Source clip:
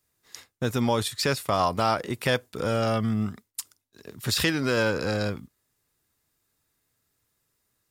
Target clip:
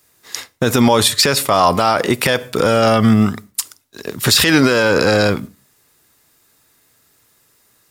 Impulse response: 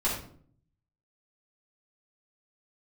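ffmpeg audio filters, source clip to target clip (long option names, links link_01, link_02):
-filter_complex "[0:a]lowshelf=frequency=130:gain=-10.5,asplit=2[link_01][link_02];[1:a]atrim=start_sample=2205,afade=type=out:start_time=0.25:duration=0.01,atrim=end_sample=11466[link_03];[link_02][link_03]afir=irnorm=-1:irlink=0,volume=-30.5dB[link_04];[link_01][link_04]amix=inputs=2:normalize=0,alimiter=level_in=19dB:limit=-1dB:release=50:level=0:latency=1,volume=-1dB"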